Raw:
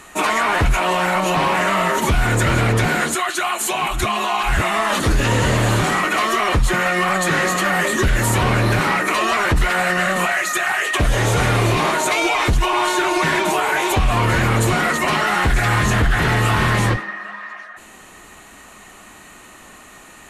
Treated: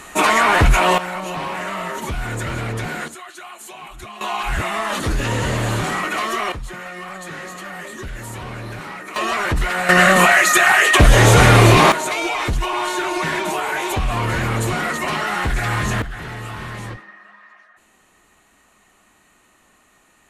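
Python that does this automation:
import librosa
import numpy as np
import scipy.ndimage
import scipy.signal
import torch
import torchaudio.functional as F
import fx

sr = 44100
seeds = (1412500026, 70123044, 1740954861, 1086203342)

y = fx.gain(x, sr, db=fx.steps((0.0, 3.5), (0.98, -8.5), (3.08, -16.0), (4.21, -4.0), (6.52, -14.5), (9.16, -3.0), (9.89, 7.0), (11.92, -4.0), (16.02, -14.0)))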